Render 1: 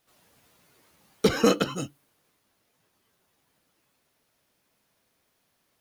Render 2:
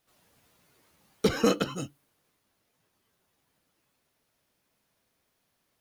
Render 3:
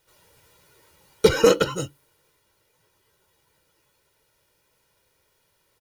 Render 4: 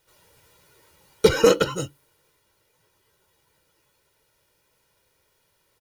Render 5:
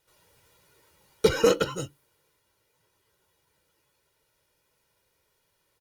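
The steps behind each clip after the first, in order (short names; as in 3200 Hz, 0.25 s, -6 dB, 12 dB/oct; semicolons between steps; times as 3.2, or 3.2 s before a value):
low shelf 120 Hz +3.5 dB; gain -3.5 dB
comb 2.1 ms, depth 69%; gain +6 dB
nothing audible
gain -4.5 dB; Opus 64 kbps 48000 Hz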